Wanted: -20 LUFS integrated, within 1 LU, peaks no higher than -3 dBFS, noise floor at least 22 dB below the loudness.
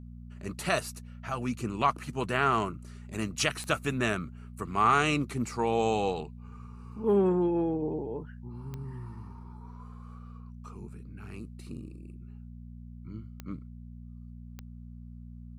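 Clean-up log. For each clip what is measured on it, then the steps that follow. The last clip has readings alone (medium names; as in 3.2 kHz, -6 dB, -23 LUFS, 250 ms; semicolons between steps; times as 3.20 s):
clicks found 4; hum 60 Hz; highest harmonic 240 Hz; hum level -42 dBFS; loudness -29.5 LUFS; peak level -10.5 dBFS; loudness target -20.0 LUFS
-> de-click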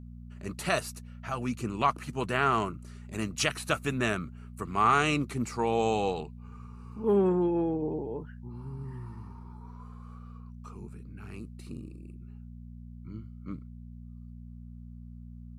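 clicks found 0; hum 60 Hz; highest harmonic 240 Hz; hum level -42 dBFS
-> de-hum 60 Hz, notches 4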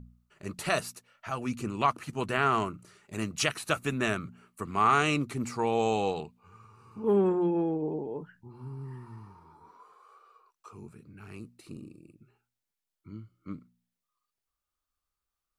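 hum not found; loudness -29.5 LUFS; peak level -10.5 dBFS; loudness target -20.0 LUFS
-> trim +9.5 dB; peak limiter -3 dBFS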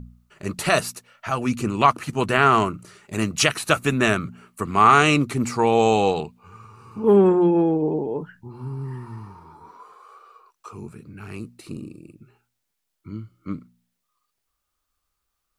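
loudness -20.0 LUFS; peak level -3.0 dBFS; noise floor -78 dBFS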